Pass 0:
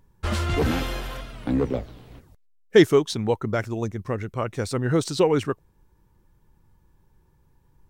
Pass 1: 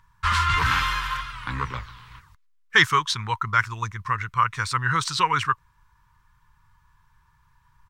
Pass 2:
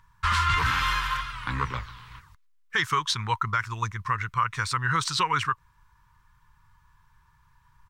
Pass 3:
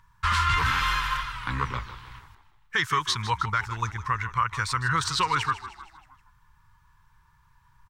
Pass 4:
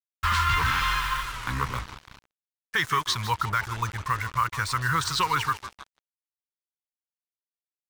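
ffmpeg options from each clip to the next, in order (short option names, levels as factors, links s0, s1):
-af "firequalizer=gain_entry='entry(130,0);entry(240,-16);entry(700,-15);entry(990,15);entry(2500,9);entry(12000,-1)':delay=0.05:min_phase=1,volume=0.841"
-af "alimiter=limit=0.2:level=0:latency=1:release=129"
-filter_complex "[0:a]asplit=6[s0][s1][s2][s3][s4][s5];[s1]adelay=156,afreqshift=-36,volume=0.2[s6];[s2]adelay=312,afreqshift=-72,volume=0.102[s7];[s3]adelay=468,afreqshift=-108,volume=0.0519[s8];[s4]adelay=624,afreqshift=-144,volume=0.0266[s9];[s5]adelay=780,afreqshift=-180,volume=0.0135[s10];[s0][s6][s7][s8][s9][s10]amix=inputs=6:normalize=0"
-af "acrusher=bits=5:mix=0:aa=0.5"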